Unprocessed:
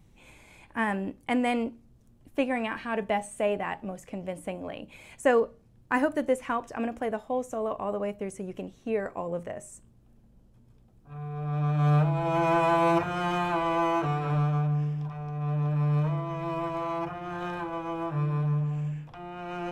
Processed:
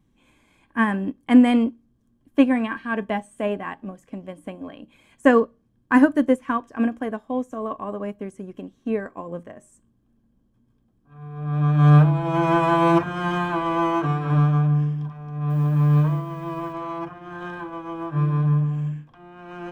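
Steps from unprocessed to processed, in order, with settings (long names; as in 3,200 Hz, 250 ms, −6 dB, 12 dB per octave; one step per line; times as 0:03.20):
0:15.50–0:16.73: hold until the input has moved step −50.5 dBFS
dynamic equaliser 150 Hz, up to +4 dB, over −37 dBFS, Q 1.3
hollow resonant body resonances 260/1,100/1,600/3,200 Hz, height 10 dB, ringing for 25 ms
expander for the loud parts 1.5 to 1, over −40 dBFS
level +4.5 dB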